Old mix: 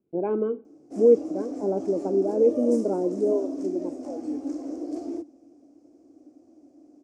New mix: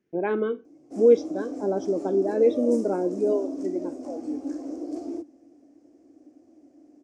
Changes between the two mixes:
speech: remove moving average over 24 samples
reverb: off

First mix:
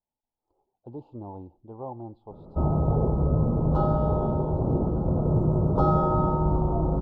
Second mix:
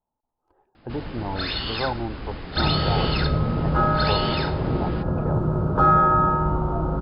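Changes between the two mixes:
speech +8.5 dB
first sound: unmuted
master: remove Butterworth band-reject 1,900 Hz, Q 0.65

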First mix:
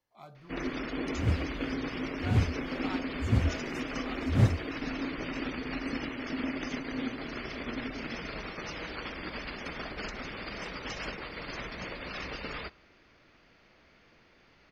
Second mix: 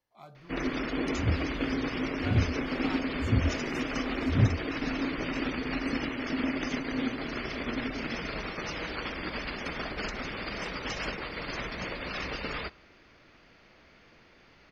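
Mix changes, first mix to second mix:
first sound +3.5 dB
second sound: add moving average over 35 samples

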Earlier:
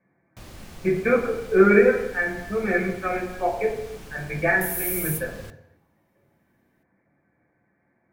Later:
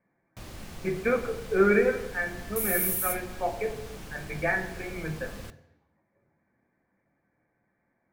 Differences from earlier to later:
speech: send −8.5 dB
second sound: entry −2.05 s

